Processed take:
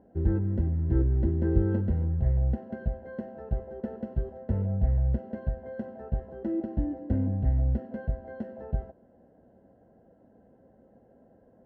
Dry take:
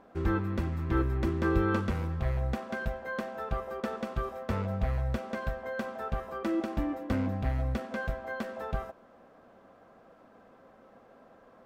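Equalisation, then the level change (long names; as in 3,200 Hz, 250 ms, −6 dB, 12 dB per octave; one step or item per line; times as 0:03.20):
moving average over 37 samples
high-pass filter 55 Hz
low-shelf EQ 120 Hz +10.5 dB
0.0 dB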